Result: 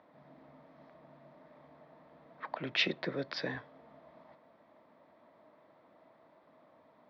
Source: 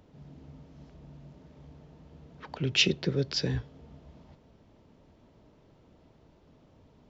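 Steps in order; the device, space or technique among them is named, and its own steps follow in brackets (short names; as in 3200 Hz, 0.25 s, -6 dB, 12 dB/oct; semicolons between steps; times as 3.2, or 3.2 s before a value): phone earpiece (speaker cabinet 340–3700 Hz, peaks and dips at 410 Hz -9 dB, 640 Hz +7 dB, 1100 Hz +7 dB, 1900 Hz +6 dB, 2900 Hz -10 dB)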